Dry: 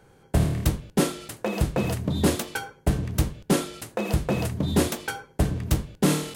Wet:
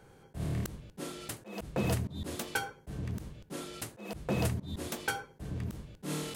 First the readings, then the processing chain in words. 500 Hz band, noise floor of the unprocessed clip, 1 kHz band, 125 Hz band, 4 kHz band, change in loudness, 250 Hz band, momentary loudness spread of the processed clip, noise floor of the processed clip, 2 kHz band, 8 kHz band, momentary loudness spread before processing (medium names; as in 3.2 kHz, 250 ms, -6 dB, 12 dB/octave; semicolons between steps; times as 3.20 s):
-11.5 dB, -56 dBFS, -8.5 dB, -10.5 dB, -9.5 dB, -11.0 dB, -12.5 dB, 10 LU, -60 dBFS, -5.5 dB, -10.5 dB, 7 LU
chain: slow attack 320 ms; trim -2 dB